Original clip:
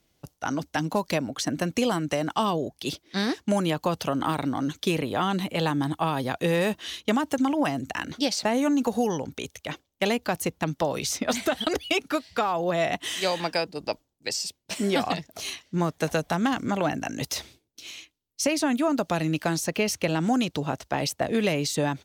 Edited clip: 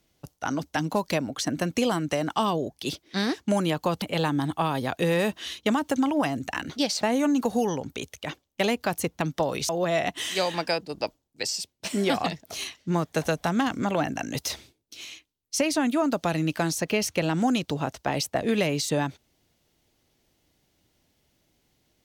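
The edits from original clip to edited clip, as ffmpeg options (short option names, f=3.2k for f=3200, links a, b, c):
-filter_complex "[0:a]asplit=3[a][b][c];[a]atrim=end=4.022[d];[b]atrim=start=5.438:end=11.112[e];[c]atrim=start=12.548[f];[d][e]acrossfade=d=0.004:c1=hsin:c2=hsin[g];[g][f]acrossfade=d=0.004:c1=hsin:c2=hsin"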